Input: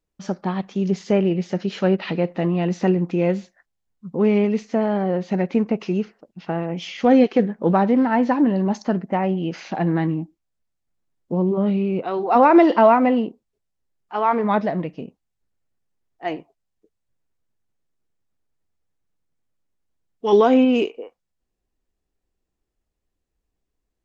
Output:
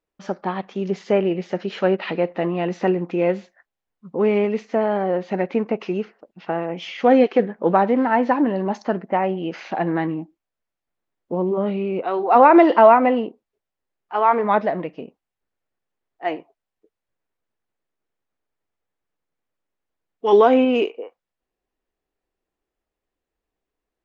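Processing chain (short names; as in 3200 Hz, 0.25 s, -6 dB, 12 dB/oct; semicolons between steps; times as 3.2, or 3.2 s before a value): tone controls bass -12 dB, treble -11 dB; gain +3 dB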